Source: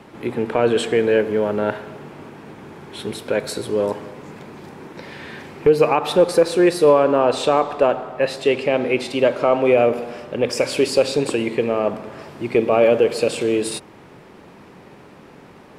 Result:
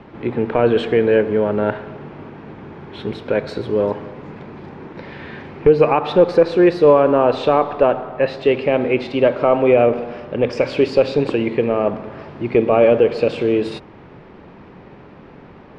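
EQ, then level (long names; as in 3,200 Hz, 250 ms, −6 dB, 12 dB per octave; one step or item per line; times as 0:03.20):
high-frequency loss of the air 240 metres
low-shelf EQ 78 Hz +9 dB
+2.5 dB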